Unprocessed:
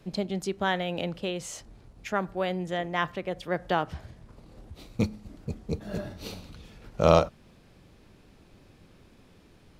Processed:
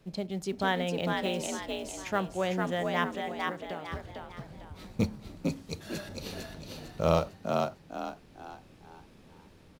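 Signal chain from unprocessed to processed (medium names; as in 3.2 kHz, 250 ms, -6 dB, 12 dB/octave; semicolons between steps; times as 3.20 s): 5.48–6.09 s: tilt shelf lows -10 dB, about 1.1 kHz; in parallel at -10 dB: short-mantissa float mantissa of 2-bit; on the sum: level rider gain up to 4 dB; 1.07–1.47 s: treble shelf 5.9 kHz +7 dB; 3.04–3.92 s: compression 6:1, threshold -30 dBFS, peak gain reduction 15.5 dB; frequency-shifting echo 452 ms, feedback 38%, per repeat +61 Hz, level -3.5 dB; on a send at -19 dB: reverberation RT60 0.30 s, pre-delay 3 ms; on the sum: trim -8 dB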